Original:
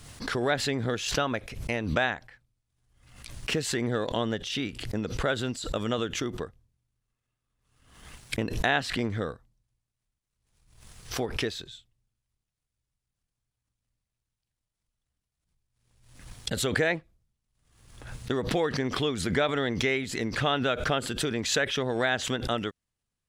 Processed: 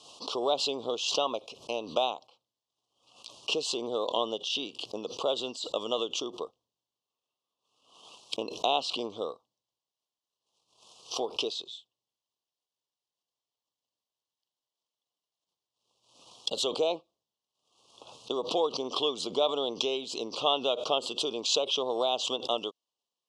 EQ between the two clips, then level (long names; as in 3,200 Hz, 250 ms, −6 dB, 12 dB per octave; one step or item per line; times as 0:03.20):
Chebyshev band-pass filter 460–5,600 Hz, order 2
elliptic band-stop filter 1,100–2,900 Hz, stop band 70 dB
parametric band 2,000 Hz +5 dB 2.7 octaves
0.0 dB